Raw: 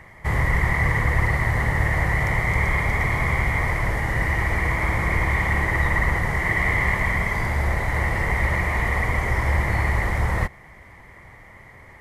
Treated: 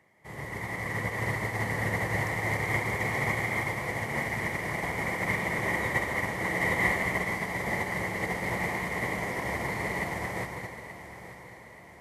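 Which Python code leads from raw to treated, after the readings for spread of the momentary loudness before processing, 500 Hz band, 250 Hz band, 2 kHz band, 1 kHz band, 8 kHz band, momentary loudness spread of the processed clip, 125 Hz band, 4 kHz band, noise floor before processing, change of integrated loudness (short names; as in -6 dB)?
3 LU, -3.5 dB, -4.5 dB, -6.5 dB, -6.5 dB, -1.5 dB, 13 LU, -12.5 dB, -3.0 dB, -46 dBFS, -7.5 dB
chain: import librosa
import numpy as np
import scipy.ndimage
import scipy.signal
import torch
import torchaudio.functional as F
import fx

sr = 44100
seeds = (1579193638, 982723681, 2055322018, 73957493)

p1 = scipy.signal.sosfilt(scipy.signal.butter(2, 200.0, 'highpass', fs=sr, output='sos'), x)
p2 = fx.peak_eq(p1, sr, hz=1400.0, db=-8.5, octaves=1.6)
p3 = p2 + fx.echo_feedback(p2, sr, ms=881, feedback_pct=49, wet_db=-5.0, dry=0)
p4 = fx.rev_plate(p3, sr, seeds[0], rt60_s=2.8, hf_ratio=0.95, predelay_ms=115, drr_db=1.0)
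y = fx.upward_expand(p4, sr, threshold_db=-31.0, expansion=2.5)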